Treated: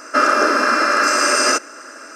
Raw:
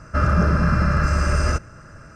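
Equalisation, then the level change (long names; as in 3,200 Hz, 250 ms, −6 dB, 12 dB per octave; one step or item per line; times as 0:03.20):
linear-phase brick-wall high-pass 240 Hz
high-shelf EQ 2,800 Hz +10.5 dB
+8.0 dB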